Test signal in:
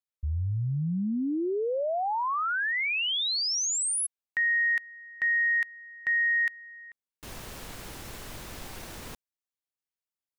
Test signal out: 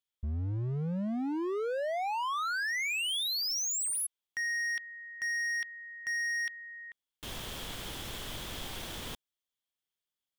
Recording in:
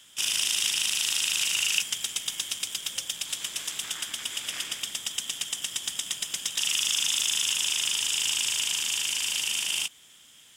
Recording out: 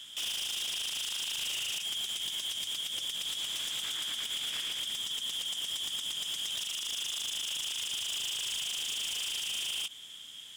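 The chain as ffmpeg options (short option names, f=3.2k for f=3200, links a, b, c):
-af "equalizer=f=3.3k:t=o:w=0.32:g=11.5,acompressor=threshold=-26dB:ratio=4:attack=0.11:release=65:knee=1:detection=rms,asoftclip=type=hard:threshold=-31.5dB"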